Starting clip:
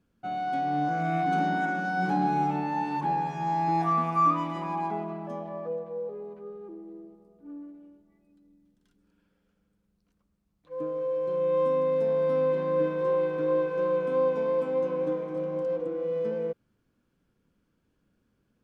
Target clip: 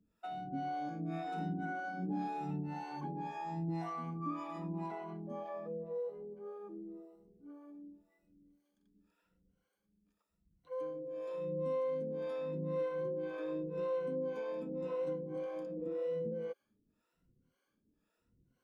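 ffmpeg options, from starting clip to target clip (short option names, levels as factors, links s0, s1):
-filter_complex "[0:a]afftfilt=real='re*pow(10,13/40*sin(2*PI*(2*log(max(b,1)*sr/1024/100)/log(2)-(0.89)*(pts-256)/sr)))':imag='im*pow(10,13/40*sin(2*PI*(2*log(max(b,1)*sr/1024/100)/log(2)-(0.89)*(pts-256)/sr)))':win_size=1024:overlap=0.75,acrossover=split=430[s0][s1];[s0]aeval=exprs='val(0)*(1-1/2+1/2*cos(2*PI*1.9*n/s))':c=same[s2];[s1]aeval=exprs='val(0)*(1-1/2-1/2*cos(2*PI*1.9*n/s))':c=same[s3];[s2][s3]amix=inputs=2:normalize=0,acrossover=split=460|2100[s4][s5][s6];[s4]acompressor=threshold=0.02:ratio=4[s7];[s5]acompressor=threshold=0.00708:ratio=4[s8];[s6]acompressor=threshold=0.00126:ratio=4[s9];[s7][s8][s9]amix=inputs=3:normalize=0,volume=0.794"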